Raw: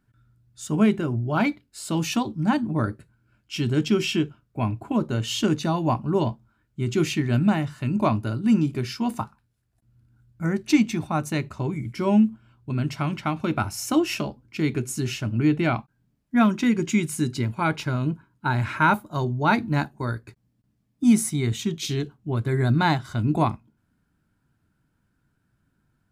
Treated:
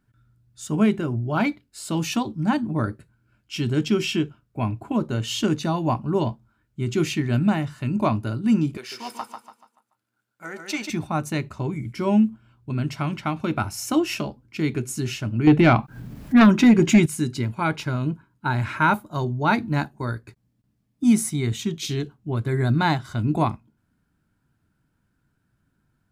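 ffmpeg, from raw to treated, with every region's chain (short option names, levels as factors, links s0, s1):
-filter_complex "[0:a]asettb=1/sr,asplit=3[s0][s1][s2];[s0]atrim=end=8.774[s3];[s1]atrim=start=8.77:end=10.9,asetpts=PTS-STARTPTS,afade=t=in:d=0.004:c=qsin,afade=t=out:st=2.126:d=0.004:c=qsin,aeval=exprs='if(lt(val(0),0),0.708*val(0),val(0))':c=same,highpass=570,aecho=1:1:144|288|432|576|720:0.501|0.195|0.0762|0.0297|0.0116,atrim=end_sample=93933[s4];[s2]atrim=start=10.896[s5];[s3][s4]acrossfade=d=0.004:c1=hsin:c2=qsin[s6];[s6][s5]acrossfade=d=0.004:c1=qsin:c2=hsin,asettb=1/sr,asplit=3[s7][s8][s9];[s7]atrim=end=15.474[s10];[s8]atrim=start=15.47:end=17.06,asetpts=PTS-STARTPTS,afade=t=in:d=0.004:c=qsin,afade=t=out:st=1.586:d=0.004:c=qsin,equalizer=f=8300:w=0.43:g=-6,acompressor=mode=upward:threshold=0.0501:ratio=2.5:attack=3.2:release=140:knee=2.83:detection=peak,aeval=exprs='0.398*sin(PI/2*1.78*val(0)/0.398)':c=same[s11];[s9]atrim=start=17.056[s12];[s10][s11]acrossfade=d=0.004:c1=hsin:c2=qsin[s13];[s13][s12]acrossfade=d=0.004:c1=qsin:c2=hsin"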